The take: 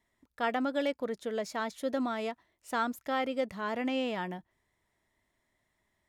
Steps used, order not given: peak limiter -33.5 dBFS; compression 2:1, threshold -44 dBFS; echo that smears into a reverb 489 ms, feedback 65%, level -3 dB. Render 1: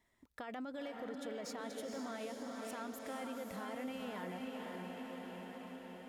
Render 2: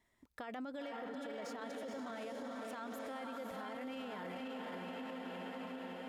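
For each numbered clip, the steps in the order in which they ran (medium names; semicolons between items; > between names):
peak limiter > echo that smears into a reverb > compression; echo that smears into a reverb > peak limiter > compression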